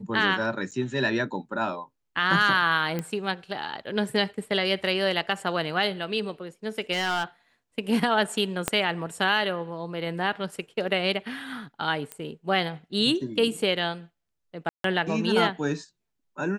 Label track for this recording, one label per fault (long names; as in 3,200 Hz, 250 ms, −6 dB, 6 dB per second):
0.710000	0.720000	drop-out 7.2 ms
2.990000	2.990000	click −16 dBFS
6.920000	7.240000	clipping −21.5 dBFS
8.680000	8.680000	click −7 dBFS
12.120000	12.120000	click −17 dBFS
14.690000	14.840000	drop-out 153 ms